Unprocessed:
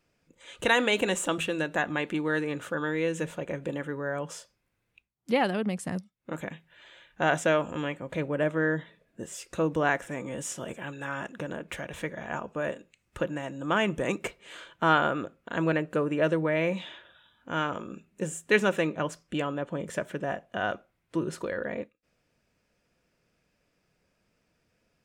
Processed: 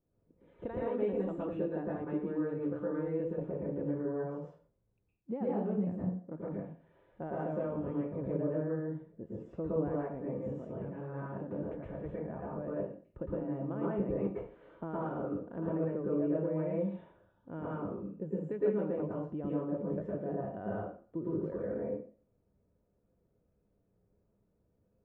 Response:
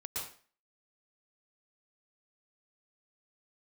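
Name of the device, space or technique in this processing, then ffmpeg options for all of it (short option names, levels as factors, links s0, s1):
television next door: -filter_complex "[0:a]acompressor=threshold=0.0447:ratio=4,lowpass=530[s0];[1:a]atrim=start_sample=2205[s1];[s0][s1]afir=irnorm=-1:irlink=0"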